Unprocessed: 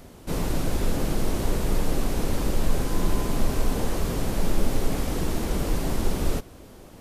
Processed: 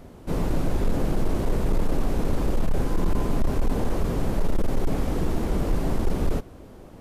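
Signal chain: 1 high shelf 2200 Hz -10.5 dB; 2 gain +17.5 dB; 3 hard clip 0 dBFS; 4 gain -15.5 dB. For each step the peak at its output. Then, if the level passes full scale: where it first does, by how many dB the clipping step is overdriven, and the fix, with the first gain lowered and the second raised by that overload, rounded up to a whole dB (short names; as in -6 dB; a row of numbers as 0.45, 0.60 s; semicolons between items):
-9.5, +8.0, 0.0, -15.5 dBFS; step 2, 8.0 dB; step 2 +9.5 dB, step 4 -7.5 dB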